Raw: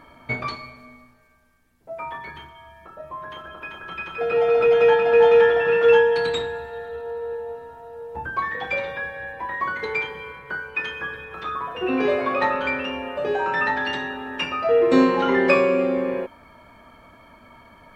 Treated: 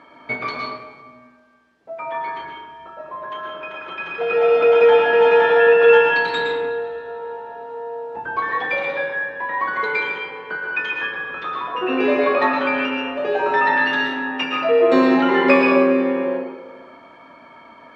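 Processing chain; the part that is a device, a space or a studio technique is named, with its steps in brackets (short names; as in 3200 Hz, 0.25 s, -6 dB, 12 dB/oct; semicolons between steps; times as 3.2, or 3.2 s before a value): supermarket ceiling speaker (BPF 230–5000 Hz; reverb RT60 1.1 s, pre-delay 0.107 s, DRR 0 dB); gain +2 dB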